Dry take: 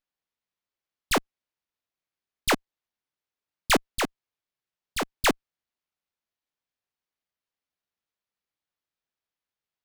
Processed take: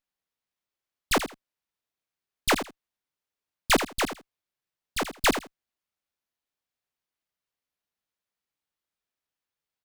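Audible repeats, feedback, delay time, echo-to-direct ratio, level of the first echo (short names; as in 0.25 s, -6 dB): 2, 17%, 81 ms, -10.0 dB, -10.0 dB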